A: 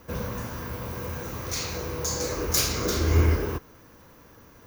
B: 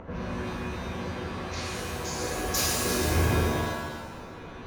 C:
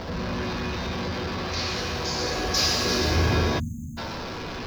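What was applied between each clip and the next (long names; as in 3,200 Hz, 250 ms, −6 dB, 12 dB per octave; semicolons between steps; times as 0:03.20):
low-pass that shuts in the quiet parts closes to 1,100 Hz, open at −20.5 dBFS; upward compression, threshold −29 dBFS; reverb with rising layers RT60 1.2 s, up +7 semitones, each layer −2 dB, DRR −1.5 dB; level −5.5 dB
converter with a step at zero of −33.5 dBFS; time-frequency box erased 0:03.59–0:03.98, 290–6,200 Hz; high shelf with overshoot 6,700 Hz −11 dB, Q 3; level +1 dB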